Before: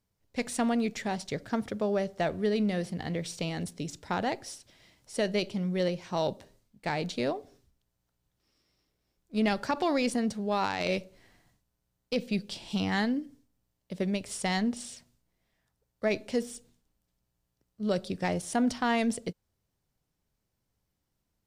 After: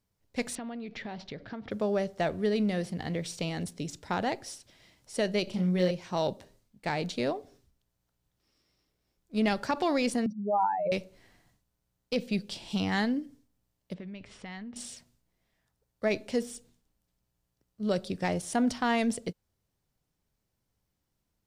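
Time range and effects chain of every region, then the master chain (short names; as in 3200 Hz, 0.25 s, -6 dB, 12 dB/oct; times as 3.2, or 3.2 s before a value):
0.55–1.71 LPF 4200 Hz 24 dB/oct + compressor 10:1, threshold -35 dBFS
5.44–5.91 de-esser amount 100% + doubler 33 ms -4 dB
10.26–10.92 spectral contrast raised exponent 3.8 + HPF 160 Hz + bell 1300 Hz +7 dB 1.4 oct
13.94–14.76 Chebyshev low-pass 2400 Hz + dynamic EQ 550 Hz, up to -6 dB, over -46 dBFS, Q 0.8 + compressor, threshold -39 dBFS
whole clip: dry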